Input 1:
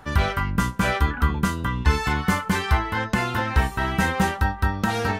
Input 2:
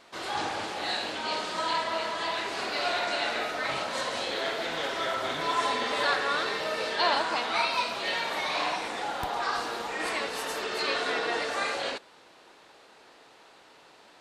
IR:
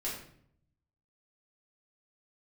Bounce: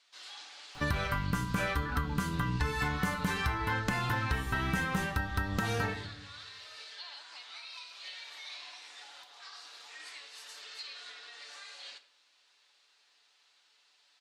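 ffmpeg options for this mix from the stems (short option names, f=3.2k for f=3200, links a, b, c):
-filter_complex "[0:a]adelay=750,volume=-1.5dB,asplit=2[a][b];[b]volume=-10.5dB[c];[1:a]alimiter=limit=-23.5dB:level=0:latency=1:release=401,bandpass=f=5k:t=q:w=0.95:csg=0,volume=-8dB,asplit=2[d][e];[e]volume=-10.5dB[f];[2:a]atrim=start_sample=2205[g];[c][f]amix=inputs=2:normalize=0[h];[h][g]afir=irnorm=-1:irlink=0[i];[a][d][i]amix=inputs=3:normalize=0,equalizer=f=490:w=0.54:g=-2.5,aecho=1:1:6.9:0.39,acompressor=threshold=-28dB:ratio=8"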